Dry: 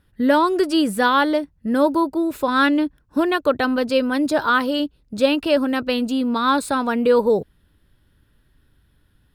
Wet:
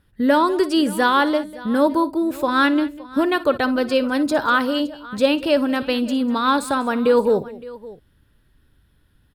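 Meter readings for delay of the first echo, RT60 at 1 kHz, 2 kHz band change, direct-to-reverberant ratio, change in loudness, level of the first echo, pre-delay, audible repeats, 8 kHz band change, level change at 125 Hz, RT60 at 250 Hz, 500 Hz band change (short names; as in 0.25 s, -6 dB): 58 ms, none, 0.0 dB, none, 0.0 dB, -18.0 dB, none, 3, 0.0 dB, 0.0 dB, none, 0.0 dB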